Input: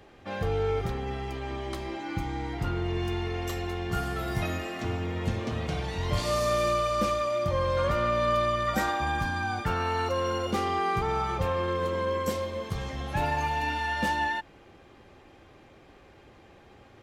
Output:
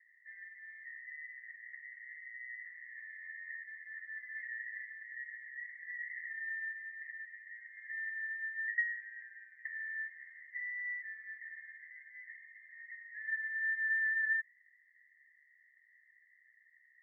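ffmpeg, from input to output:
-af "asuperpass=centerf=1900:order=8:qfactor=7.3,volume=1.68"

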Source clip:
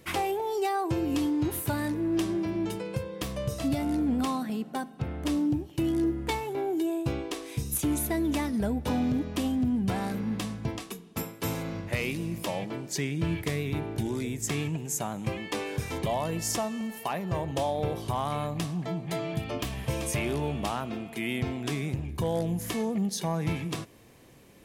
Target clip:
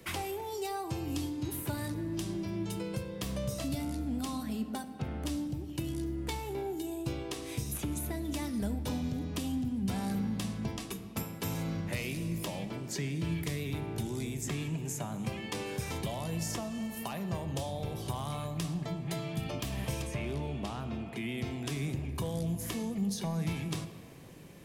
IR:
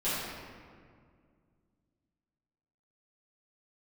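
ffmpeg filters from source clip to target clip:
-filter_complex "[0:a]acrossover=split=84|170|3500[s0][s1][s2][s3];[s0]acompressor=threshold=0.00631:ratio=4[s4];[s1]acompressor=threshold=0.0112:ratio=4[s5];[s2]acompressor=threshold=0.01:ratio=4[s6];[s3]acompressor=threshold=0.00891:ratio=4[s7];[s4][s5][s6][s7]amix=inputs=4:normalize=0,asettb=1/sr,asplit=3[s8][s9][s10];[s8]atrim=end=20.024[s11];[s9]atrim=start=20.02:end=21.38,asetpts=PTS-STARTPTS,afade=t=in:d=0.004:c=qsin,afade=t=out:st=1.356:d=0.004:c=qsin,aemphasis=mode=reproduction:type=50kf[s12];[s10]atrim=start=21.376[s13];[s11][s12]acrossfade=d=0.004:c1=hsin:c2=qsin[s14];[s14][s13]acrossfade=d=0.004:c1=qsin:c2=hsin,asplit=2[s15][s16];[1:a]atrim=start_sample=2205[s17];[s16][s17]afir=irnorm=-1:irlink=0,volume=0.133[s18];[s15][s18]amix=inputs=2:normalize=0"

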